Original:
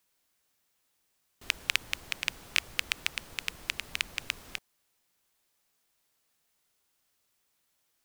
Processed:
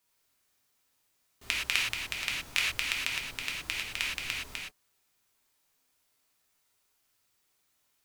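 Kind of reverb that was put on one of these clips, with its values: non-linear reverb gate 0.14 s flat, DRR -3.5 dB; gain -3.5 dB

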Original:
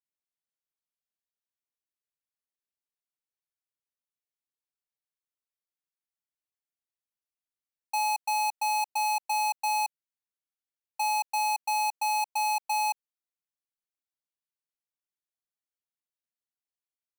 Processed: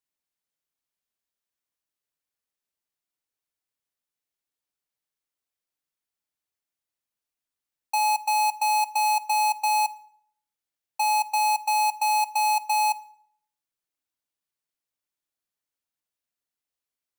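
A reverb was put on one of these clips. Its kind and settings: FDN reverb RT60 0.63 s, low-frequency decay 1×, high-frequency decay 0.75×, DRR 14 dB; gain +4.5 dB

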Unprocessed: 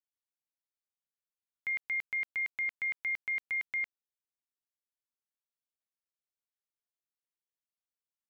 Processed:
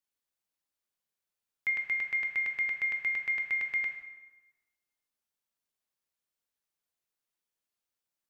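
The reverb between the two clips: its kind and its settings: plate-style reverb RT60 1.2 s, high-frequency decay 0.75×, DRR 3.5 dB; gain +4 dB

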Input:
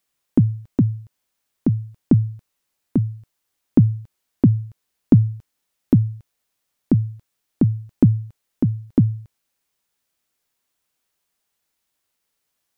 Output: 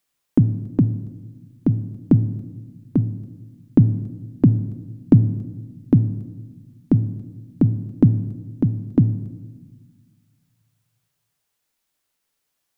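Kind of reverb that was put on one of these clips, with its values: shoebox room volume 900 m³, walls mixed, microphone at 0.38 m

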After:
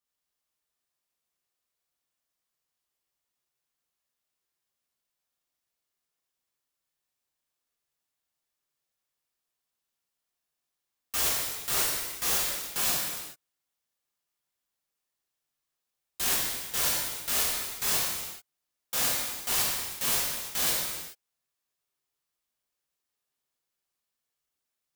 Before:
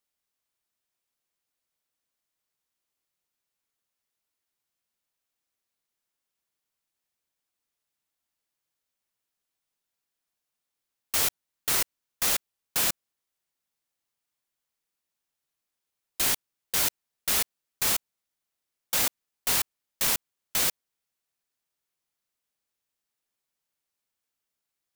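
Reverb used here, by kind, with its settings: non-linear reverb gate 0.46 s falling, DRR -6.5 dB; gain -7.5 dB

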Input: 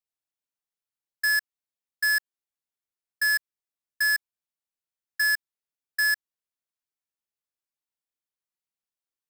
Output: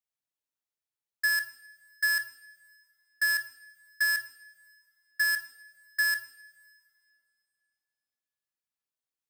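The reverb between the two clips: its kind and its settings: two-slope reverb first 0.48 s, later 2.5 s, from -21 dB, DRR 7 dB; gain -3 dB

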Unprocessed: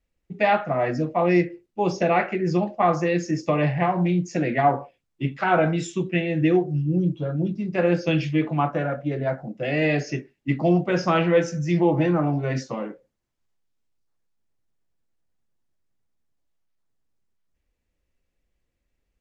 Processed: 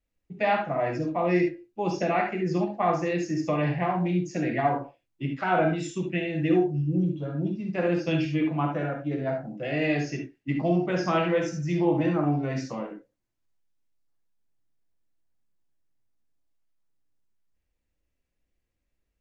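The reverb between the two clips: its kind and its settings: non-linear reverb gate 90 ms rising, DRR 3.5 dB; gain -5.5 dB

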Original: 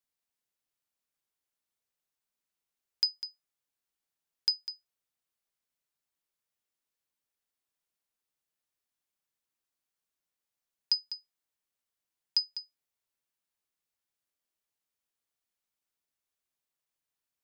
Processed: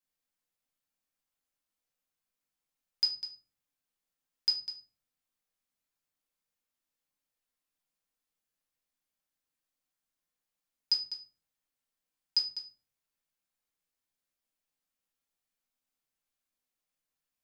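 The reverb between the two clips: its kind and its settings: shoebox room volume 250 m³, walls furnished, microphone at 2.1 m; gain -3.5 dB

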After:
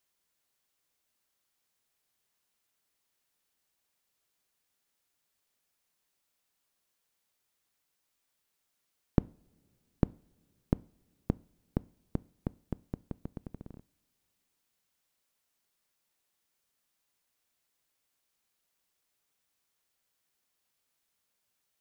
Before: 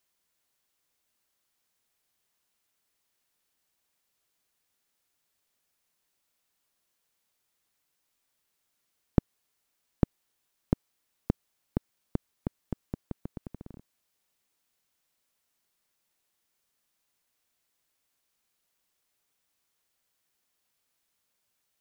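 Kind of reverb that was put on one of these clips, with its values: two-slope reverb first 0.42 s, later 2.8 s, from -22 dB, DRR 20 dB; gain -2 dB

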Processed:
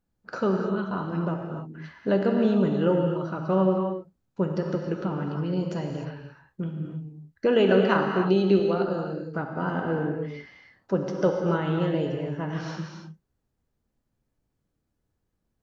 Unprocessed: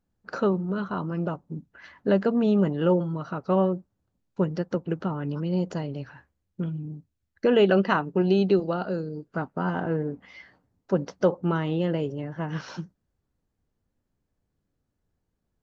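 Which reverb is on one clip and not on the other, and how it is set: non-linear reverb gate 0.33 s flat, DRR 1.5 dB; gain -1.5 dB

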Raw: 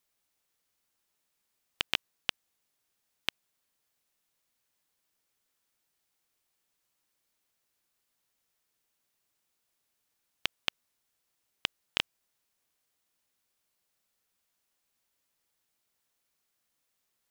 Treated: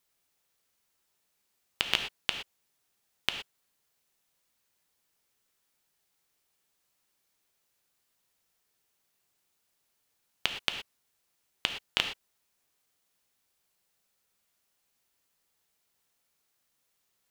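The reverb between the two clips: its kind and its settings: non-linear reverb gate 0.14 s flat, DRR 5.5 dB; gain +2 dB

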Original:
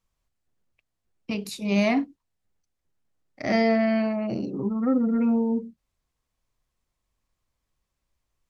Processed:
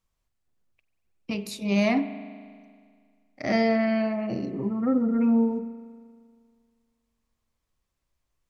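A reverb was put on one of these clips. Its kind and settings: spring tank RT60 2 s, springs 39 ms, chirp 65 ms, DRR 12 dB; gain -1 dB

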